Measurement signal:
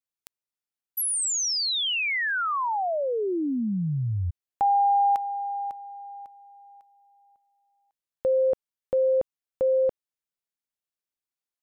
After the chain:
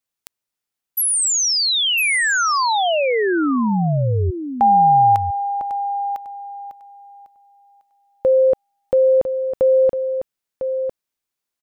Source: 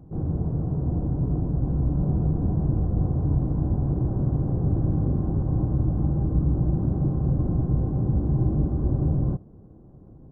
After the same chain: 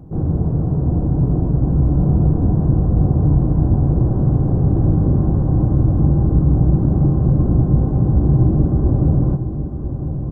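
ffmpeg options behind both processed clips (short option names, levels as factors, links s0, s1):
-af "aecho=1:1:1002:0.376,volume=2.51"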